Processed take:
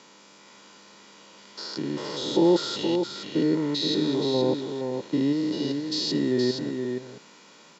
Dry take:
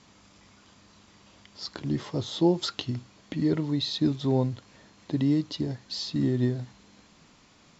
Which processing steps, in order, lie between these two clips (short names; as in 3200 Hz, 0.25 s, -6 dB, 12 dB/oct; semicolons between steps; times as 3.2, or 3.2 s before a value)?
stepped spectrum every 0.2 s; HPF 200 Hz 24 dB/oct; comb 2.1 ms, depth 43%; echo 0.471 s -6 dB; gain +7 dB